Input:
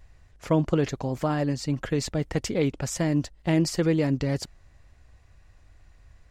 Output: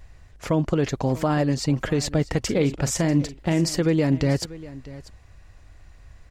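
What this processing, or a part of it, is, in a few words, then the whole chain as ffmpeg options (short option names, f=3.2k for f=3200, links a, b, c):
clipper into limiter: -filter_complex "[0:a]asoftclip=type=hard:threshold=-10.5dB,alimiter=limit=-17dB:level=0:latency=1:release=208,asettb=1/sr,asplit=3[a][b][c];[a]atrim=end=2.394[d];[b]atrim=start=2.39:end=3.69,asetpts=PTS-STARTPTS,afade=t=in:d=0.004:c=qsin,afade=t=out:st=1.296:d=0.004:c=qsin,asplit=2[e][f];[f]adelay=42,volume=-13dB[g];[e][g]amix=inputs=2:normalize=0,atrim=end_sample=57330[h];[c]atrim=start=3.686[i];[d][h]acrossfade=d=0.004:c1=hsin:c2=qsin[j];[j][i]acrossfade=d=0.004:c1=qsin:c2=hsin,aecho=1:1:641:0.126,volume=6dB"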